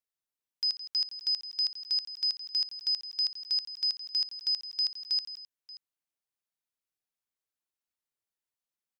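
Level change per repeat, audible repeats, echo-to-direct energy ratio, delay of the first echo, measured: no steady repeat, 3, -10.5 dB, 61 ms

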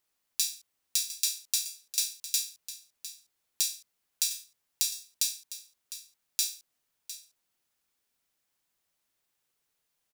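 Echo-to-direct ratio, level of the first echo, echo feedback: -13.5 dB, -13.5 dB, no steady repeat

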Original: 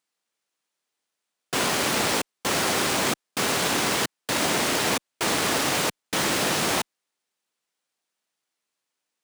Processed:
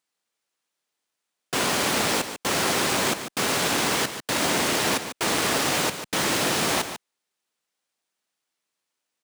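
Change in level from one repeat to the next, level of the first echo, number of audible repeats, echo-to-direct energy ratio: no steady repeat, -10.0 dB, 1, -10.0 dB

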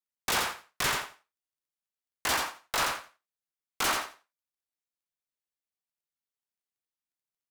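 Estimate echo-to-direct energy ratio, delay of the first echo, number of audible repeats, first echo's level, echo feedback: -4.5 dB, 86 ms, 3, -4.5 dB, 18%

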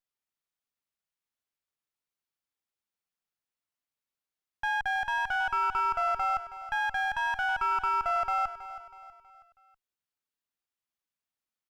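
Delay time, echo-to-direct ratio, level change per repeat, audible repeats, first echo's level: 0.322 s, -12.5 dB, -7.5 dB, 3, -13.5 dB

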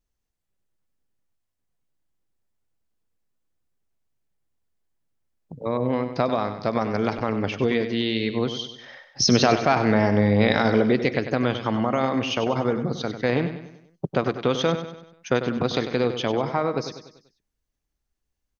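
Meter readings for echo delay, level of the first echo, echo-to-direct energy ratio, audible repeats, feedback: 97 ms, -10.0 dB, -9.0 dB, 4, 47%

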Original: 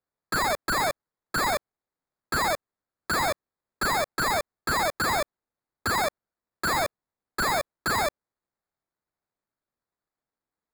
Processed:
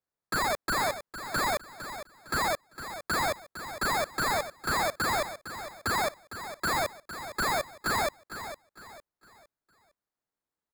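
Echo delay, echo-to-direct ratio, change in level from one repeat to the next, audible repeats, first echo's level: 0.457 s, -11.0 dB, -9.0 dB, 3, -11.5 dB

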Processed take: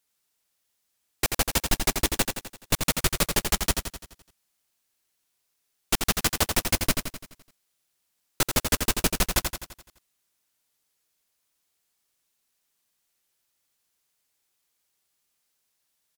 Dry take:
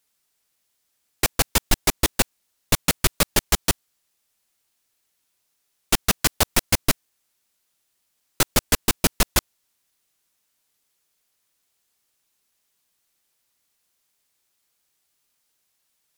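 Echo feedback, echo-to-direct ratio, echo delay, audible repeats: 53%, -4.5 dB, 85 ms, 6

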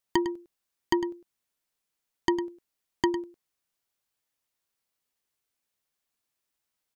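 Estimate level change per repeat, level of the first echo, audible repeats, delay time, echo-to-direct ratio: no steady repeat, -12.0 dB, 1, 0.104 s, -12.0 dB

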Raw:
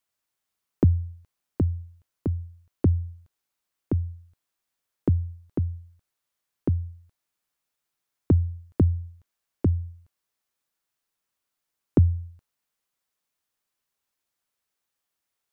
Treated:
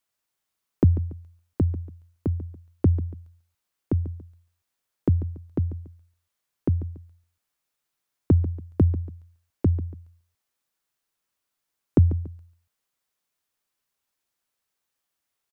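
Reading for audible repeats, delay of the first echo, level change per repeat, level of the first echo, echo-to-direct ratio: 2, 0.142 s, -9.5 dB, -15.0 dB, -14.5 dB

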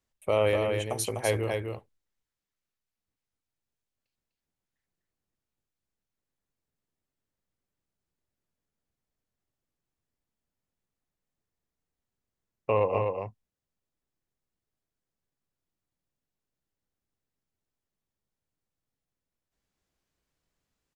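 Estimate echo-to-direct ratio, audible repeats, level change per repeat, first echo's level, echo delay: -4.5 dB, 1, no steady repeat, -4.5 dB, 0.25 s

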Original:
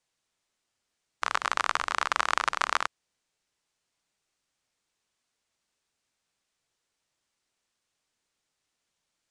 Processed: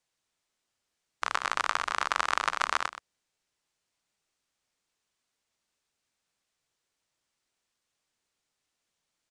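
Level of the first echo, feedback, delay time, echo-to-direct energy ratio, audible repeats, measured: -12.5 dB, no steady repeat, 0.124 s, -12.5 dB, 1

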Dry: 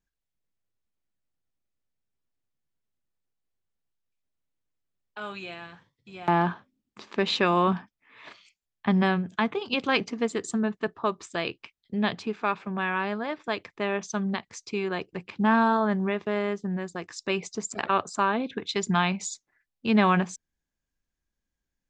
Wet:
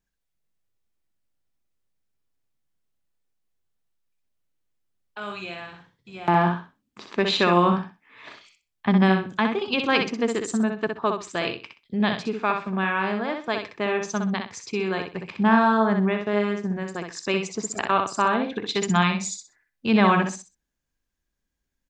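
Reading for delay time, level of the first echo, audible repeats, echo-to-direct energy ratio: 63 ms, -5.5 dB, 3, -5.5 dB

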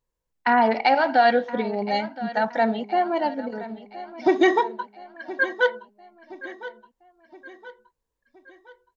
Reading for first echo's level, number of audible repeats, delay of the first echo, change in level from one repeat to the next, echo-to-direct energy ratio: -16.0 dB, 3, 1.02 s, -6.5 dB, -15.0 dB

